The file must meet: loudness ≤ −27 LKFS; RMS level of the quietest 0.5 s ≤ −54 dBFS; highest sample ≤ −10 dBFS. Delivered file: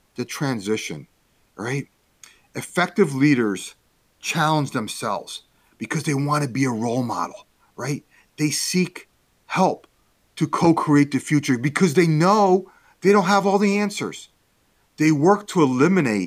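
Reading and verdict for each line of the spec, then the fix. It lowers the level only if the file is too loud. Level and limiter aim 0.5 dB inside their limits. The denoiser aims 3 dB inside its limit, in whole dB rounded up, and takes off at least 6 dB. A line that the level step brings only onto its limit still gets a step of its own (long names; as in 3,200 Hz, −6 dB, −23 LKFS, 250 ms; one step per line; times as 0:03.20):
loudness −21.0 LKFS: out of spec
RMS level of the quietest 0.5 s −63 dBFS: in spec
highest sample −4.5 dBFS: out of spec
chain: level −6.5 dB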